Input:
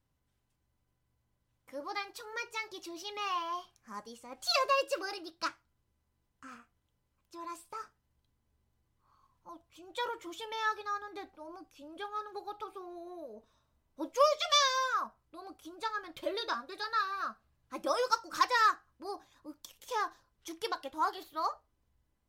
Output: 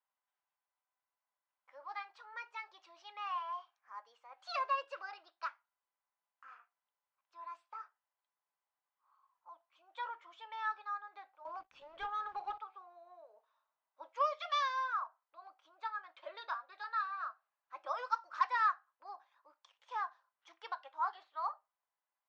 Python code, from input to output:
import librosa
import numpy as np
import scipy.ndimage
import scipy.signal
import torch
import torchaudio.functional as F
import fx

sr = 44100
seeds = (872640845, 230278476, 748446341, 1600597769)

y = scipy.signal.sosfilt(scipy.signal.butter(4, 790.0, 'highpass', fs=sr, output='sos'), x)
y = fx.leveller(y, sr, passes=3, at=(11.45, 12.58))
y = fx.spacing_loss(y, sr, db_at_10k=40)
y = y * 10.0 ** (1.0 / 20.0)